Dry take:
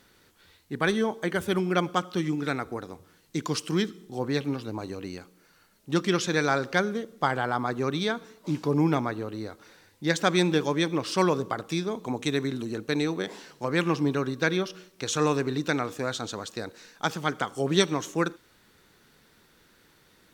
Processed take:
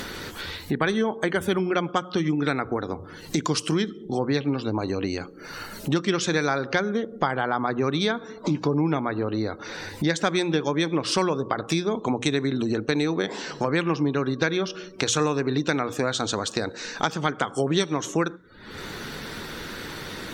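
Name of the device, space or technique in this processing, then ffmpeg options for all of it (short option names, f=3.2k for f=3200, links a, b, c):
upward and downward compression: -af "acompressor=mode=upward:threshold=-26dB:ratio=2.5,acompressor=threshold=-27dB:ratio=5,afftdn=nr=33:nf=-53,bandreject=f=60:t=h:w=6,bandreject=f=120:t=h:w=6,bandreject=f=180:t=h:w=6,volume=7.5dB"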